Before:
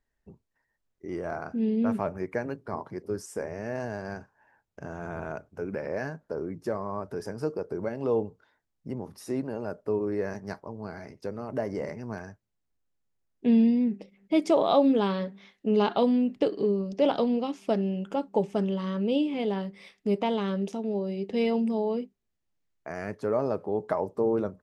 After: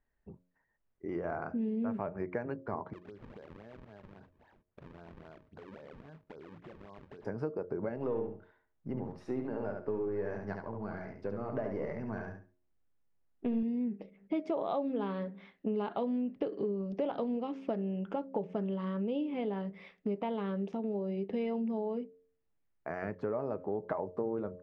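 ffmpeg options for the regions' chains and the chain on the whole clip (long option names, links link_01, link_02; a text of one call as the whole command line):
ffmpeg -i in.wav -filter_complex "[0:a]asettb=1/sr,asplit=3[link_01][link_02][link_03];[link_01]atrim=end=2.934[link_04];[link_02]atrim=start=2.93:end=7.25,asetpts=PTS-STARTPTS,afade=type=in:duration=0.004:curve=qsin,afade=type=out:start_time=4.316:duration=0.004:curve=qsin,acompressor=threshold=-45dB:ratio=20:attack=3.2:release=140:knee=1:detection=peak,acrusher=samples=37:mix=1:aa=0.000001:lfo=1:lforange=59.2:lforate=3.7[link_05];[link_03]atrim=start=7.246[link_06];[link_04][link_05]acrossfade=duration=0.004:curve1=hsin:curve2=qsin[link_07];[link_07][link_06]acrossfade=duration=0.004:curve1=qsin:curve2=hsin,asettb=1/sr,asplit=3[link_08][link_09][link_10];[link_08]atrim=end=7.964[link_11];[link_09]atrim=start=7.96:end=13.63,asetpts=PTS-STARTPTS,afade=type=in:duration=0.004:curve=qsin,afade=type=out:start_time=5.666:duration=0.004:curve=qsin,aeval=exprs='if(lt(val(0),0),0.708*val(0),val(0))':channel_layout=same,aecho=1:1:70|140|210:0.562|0.124|0.0272,atrim=end_sample=250047[link_12];[link_10]atrim=start=13.626[link_13];[link_11][link_12]acrossfade=duration=0.004:curve1=hsin:curve2=qsin[link_14];[link_14][link_13]acrossfade=duration=0.004:curve1=qsin:curve2=hsin,lowpass=2200,bandreject=frequency=89.74:width_type=h:width=4,bandreject=frequency=179.48:width_type=h:width=4,bandreject=frequency=269.22:width_type=h:width=4,bandreject=frequency=358.96:width_type=h:width=4,bandreject=frequency=448.7:width_type=h:width=4,bandreject=frequency=538.44:width_type=h:width=4,bandreject=frequency=628.18:width_type=h:width=4,acompressor=threshold=-32dB:ratio=4" out.wav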